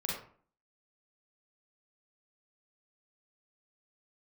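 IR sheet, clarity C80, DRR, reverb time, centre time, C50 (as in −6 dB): 6.5 dB, −4.5 dB, 0.50 s, 49 ms, 1.0 dB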